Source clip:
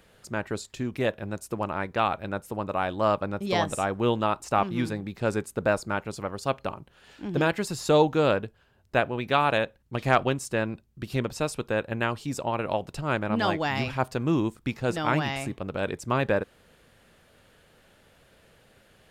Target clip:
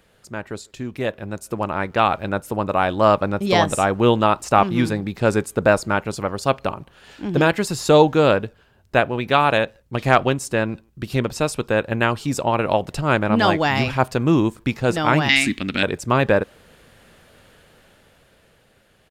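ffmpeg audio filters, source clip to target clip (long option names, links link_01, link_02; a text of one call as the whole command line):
ffmpeg -i in.wav -filter_complex "[0:a]asettb=1/sr,asplit=3[link_01][link_02][link_03];[link_01]atrim=end=15.294[link_04];[link_02]atrim=start=15.29:end=15.83,asetpts=PTS-STARTPTS,afade=type=in:duration=0.004:curve=qsin,afade=type=out:start_time=0.536:duration=0.004:curve=qsin,equalizer=frequency=125:width_type=o:width=1:gain=-9,equalizer=frequency=250:width_type=o:width=1:gain=12,equalizer=frequency=500:width_type=o:width=1:gain=-12,equalizer=frequency=1000:width_type=o:width=1:gain=-8,equalizer=frequency=2000:width_type=o:width=1:gain=12,equalizer=frequency=4000:width_type=o:width=1:gain=11,equalizer=frequency=8000:width_type=o:width=1:gain=5[link_05];[link_03]atrim=start=15.826[link_06];[link_04][link_05]acrossfade=duration=0.004:curve1=hsin:curve2=qsin[link_07];[link_07][link_06]acrossfade=duration=0.004:curve1=qsin:curve2=hsin,dynaudnorm=framelen=240:gausssize=13:maxgain=11.5dB,asplit=2[link_08][link_09];[link_09]adelay=150,highpass=300,lowpass=3400,asoftclip=type=hard:threshold=-26dB,volume=-28dB[link_10];[link_08][link_10]amix=inputs=2:normalize=0" out.wav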